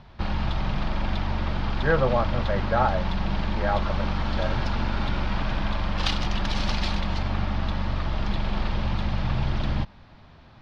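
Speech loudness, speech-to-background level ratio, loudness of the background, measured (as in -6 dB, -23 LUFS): -27.5 LUFS, 1.0 dB, -28.5 LUFS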